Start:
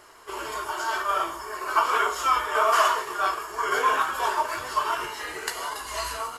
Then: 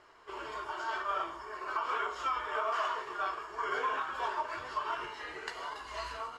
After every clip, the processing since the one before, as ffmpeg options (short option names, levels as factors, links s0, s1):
-af "lowpass=4000,alimiter=limit=0.168:level=0:latency=1:release=148,volume=0.398"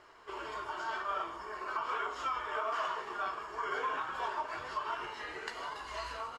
-filter_complex "[0:a]asplit=2[s0][s1];[s1]acompressor=threshold=0.00794:ratio=6,volume=0.891[s2];[s0][s2]amix=inputs=2:normalize=0,asplit=5[s3][s4][s5][s6][s7];[s4]adelay=156,afreqshift=-140,volume=0.133[s8];[s5]adelay=312,afreqshift=-280,volume=0.0653[s9];[s6]adelay=468,afreqshift=-420,volume=0.032[s10];[s7]adelay=624,afreqshift=-560,volume=0.0157[s11];[s3][s8][s9][s10][s11]amix=inputs=5:normalize=0,volume=0.631"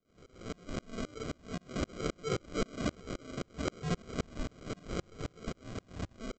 -af "aresample=16000,acrusher=samples=18:mix=1:aa=0.000001,aresample=44100,aeval=exprs='val(0)*pow(10,-35*if(lt(mod(-3.8*n/s,1),2*abs(-3.8)/1000),1-mod(-3.8*n/s,1)/(2*abs(-3.8)/1000),(mod(-3.8*n/s,1)-2*abs(-3.8)/1000)/(1-2*abs(-3.8)/1000))/20)':c=same,volume=2.66"